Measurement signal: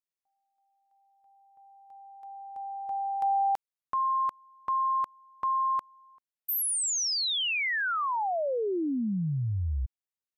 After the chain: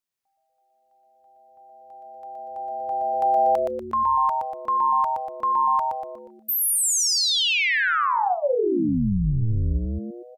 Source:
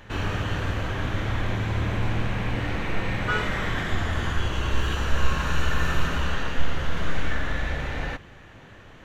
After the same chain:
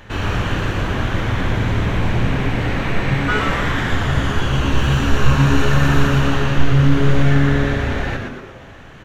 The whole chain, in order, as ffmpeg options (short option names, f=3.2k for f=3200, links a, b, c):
-filter_complex "[0:a]asplit=7[a][b][c][d][e][f][g];[b]adelay=120,afreqshift=-140,volume=-4dB[h];[c]adelay=240,afreqshift=-280,volume=-10dB[i];[d]adelay=360,afreqshift=-420,volume=-16dB[j];[e]adelay=480,afreqshift=-560,volume=-22.1dB[k];[f]adelay=600,afreqshift=-700,volume=-28.1dB[l];[g]adelay=720,afreqshift=-840,volume=-34.1dB[m];[a][h][i][j][k][l][m]amix=inputs=7:normalize=0,volume=5.5dB"